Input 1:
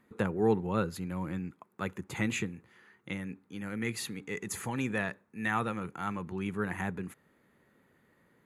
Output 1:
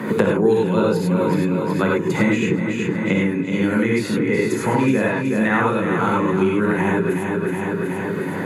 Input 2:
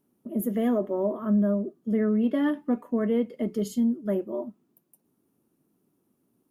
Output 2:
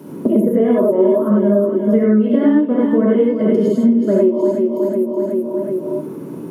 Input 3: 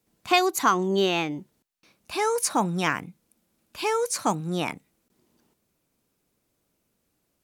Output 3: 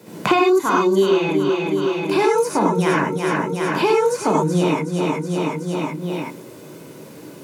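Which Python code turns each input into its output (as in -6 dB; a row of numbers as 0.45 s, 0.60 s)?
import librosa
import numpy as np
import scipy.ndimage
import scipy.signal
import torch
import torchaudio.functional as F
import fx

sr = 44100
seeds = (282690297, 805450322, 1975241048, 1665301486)

p1 = scipy.signal.sosfilt(scipy.signal.butter(4, 160.0, 'highpass', fs=sr, output='sos'), x)
p2 = fx.tilt_eq(p1, sr, slope=-2.5)
p3 = p2 + 0.32 * np.pad(p2, (int(2.0 * sr / 1000.0), 0))[:len(p2)]
p4 = p3 + fx.echo_feedback(p3, sr, ms=371, feedback_pct=42, wet_db=-10, dry=0)
p5 = fx.rev_gated(p4, sr, seeds[0], gate_ms=120, shape='rising', drr_db=-4.5)
p6 = fx.band_squash(p5, sr, depth_pct=100)
y = p6 * 10.0 ** (-3 / 20.0) / np.max(np.abs(p6))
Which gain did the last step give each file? +8.0 dB, +3.0 dB, -1.5 dB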